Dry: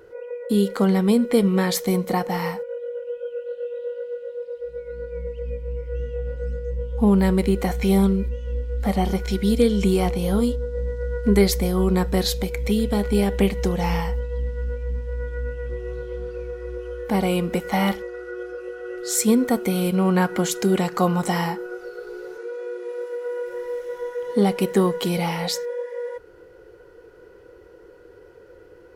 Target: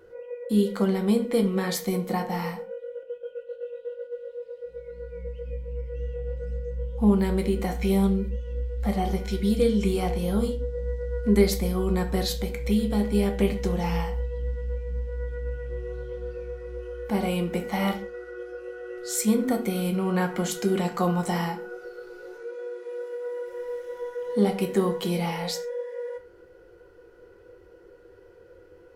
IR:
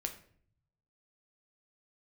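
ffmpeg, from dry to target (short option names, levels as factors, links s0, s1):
-filter_complex "[0:a]asettb=1/sr,asplit=3[s0][s1][s2];[s0]atrim=end=3.034[s3];[s1]atrim=start=3.03:end=4.16,asetpts=PTS-STARTPTS,afade=t=in:d=0.004:c=qsin,afade=t=out:st=1.126:d=0.004:c=qsin,agate=range=0.447:threshold=0.0282:ratio=16:detection=peak[s4];[s2]atrim=start=4.156[s5];[s3][s4]acrossfade=d=0.004:c1=hsin:c2=qsin[s6];[s6][s5]acrossfade=d=0.004:c1=qsin:c2=hsin[s7];[1:a]atrim=start_sample=2205,afade=t=out:st=0.24:d=0.01,atrim=end_sample=11025,asetrate=57330,aresample=44100[s8];[s7][s8]afir=irnorm=-1:irlink=0,volume=0.75"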